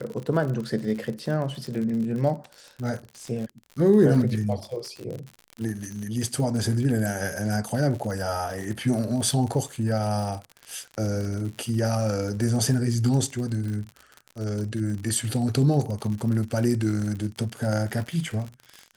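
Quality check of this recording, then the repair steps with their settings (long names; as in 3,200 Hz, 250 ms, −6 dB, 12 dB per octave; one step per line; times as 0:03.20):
surface crackle 59 per second −31 dBFS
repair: click removal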